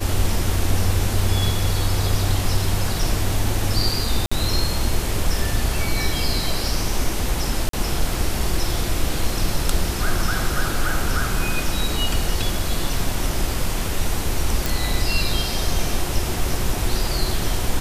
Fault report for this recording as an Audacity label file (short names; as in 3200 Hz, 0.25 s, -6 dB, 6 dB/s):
4.260000	4.320000	gap 55 ms
7.690000	7.730000	gap 43 ms
14.660000	14.660000	pop